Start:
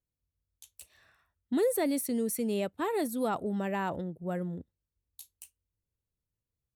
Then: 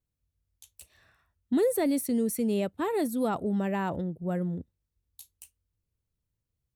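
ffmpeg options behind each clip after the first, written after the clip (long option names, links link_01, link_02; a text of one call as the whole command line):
ffmpeg -i in.wav -af "lowshelf=frequency=320:gain=6.5" out.wav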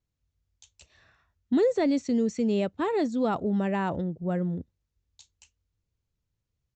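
ffmpeg -i in.wav -af "aresample=16000,aresample=44100,volume=2dB" out.wav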